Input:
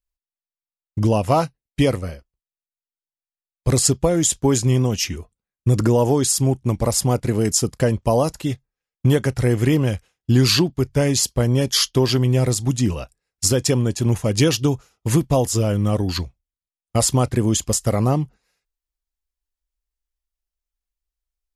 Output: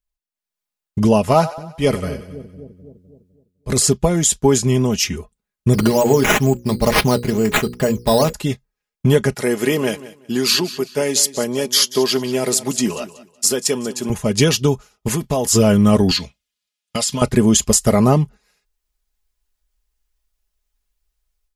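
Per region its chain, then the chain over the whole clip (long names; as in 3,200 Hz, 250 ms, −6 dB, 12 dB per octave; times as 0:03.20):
0:01.32–0:03.89: transient designer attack −12 dB, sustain 0 dB + echo with a time of its own for lows and highs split 440 Hz, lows 254 ms, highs 93 ms, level −14 dB
0:05.73–0:08.33: mains-hum notches 60/120/180/240/300/360/420/480/540 Hz + sample-and-hold swept by an LFO 8×, swing 60% 2.2 Hz
0:09.34–0:14.10: high-pass filter 290 Hz + high-shelf EQ 9,100 Hz +6 dB + repeating echo 187 ms, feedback 30%, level −16 dB
0:15.08–0:15.51: low-shelf EQ 190 Hz −8.5 dB + downward compressor 4 to 1, threshold −22 dBFS
0:16.11–0:17.22: meter weighting curve D + downward compressor, threshold −22 dBFS + notch comb filter 380 Hz
whole clip: comb filter 4.8 ms, depth 53%; automatic gain control; level −1 dB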